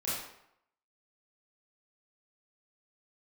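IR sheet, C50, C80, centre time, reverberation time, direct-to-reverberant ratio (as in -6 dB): -0.5 dB, 3.5 dB, 69 ms, 0.75 s, -9.5 dB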